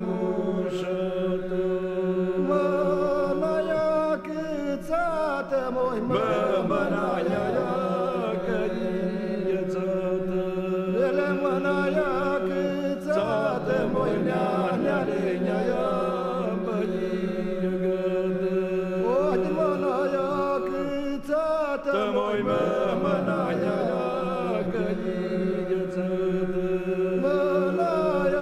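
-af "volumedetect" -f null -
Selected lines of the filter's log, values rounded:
mean_volume: -25.2 dB
max_volume: -9.7 dB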